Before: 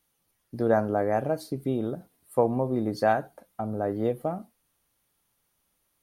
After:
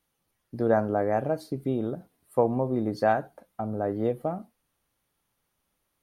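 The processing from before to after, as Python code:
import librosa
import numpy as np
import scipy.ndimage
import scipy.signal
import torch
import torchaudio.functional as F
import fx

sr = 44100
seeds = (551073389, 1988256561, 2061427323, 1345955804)

y = fx.high_shelf(x, sr, hz=4400.0, db=-6.5)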